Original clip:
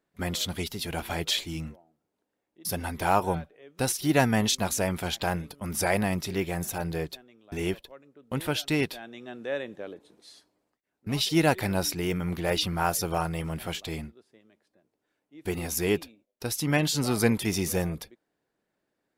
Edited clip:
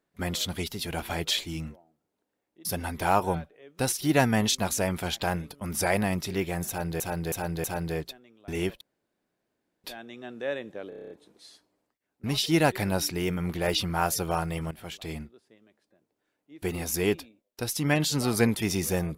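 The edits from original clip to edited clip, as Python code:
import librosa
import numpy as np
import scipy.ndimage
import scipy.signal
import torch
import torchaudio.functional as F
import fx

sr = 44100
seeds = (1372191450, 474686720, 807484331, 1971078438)

y = fx.edit(x, sr, fx.repeat(start_s=6.68, length_s=0.32, count=4),
    fx.room_tone_fill(start_s=7.85, length_s=1.03),
    fx.stutter(start_s=9.93, slice_s=0.03, count=8),
    fx.fade_in_from(start_s=13.54, length_s=0.51, floor_db=-13.5), tone=tone)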